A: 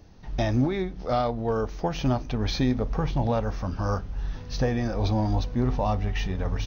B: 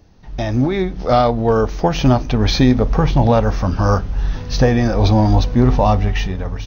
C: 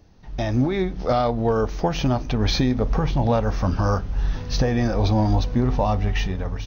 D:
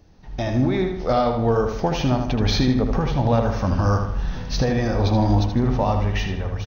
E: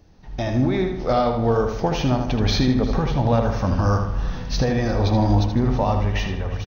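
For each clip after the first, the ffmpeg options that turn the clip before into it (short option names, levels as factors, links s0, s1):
-af "dynaudnorm=f=150:g=9:m=3.76,volume=1.19"
-af "alimiter=limit=0.422:level=0:latency=1:release=283,volume=0.668"
-filter_complex "[0:a]asplit=2[s0][s1];[s1]adelay=78,lowpass=f=4600:p=1,volume=0.531,asplit=2[s2][s3];[s3]adelay=78,lowpass=f=4600:p=1,volume=0.48,asplit=2[s4][s5];[s5]adelay=78,lowpass=f=4600:p=1,volume=0.48,asplit=2[s6][s7];[s7]adelay=78,lowpass=f=4600:p=1,volume=0.48,asplit=2[s8][s9];[s9]adelay=78,lowpass=f=4600:p=1,volume=0.48,asplit=2[s10][s11];[s11]adelay=78,lowpass=f=4600:p=1,volume=0.48[s12];[s0][s2][s4][s6][s8][s10][s12]amix=inputs=7:normalize=0"
-af "aecho=1:1:349:0.126"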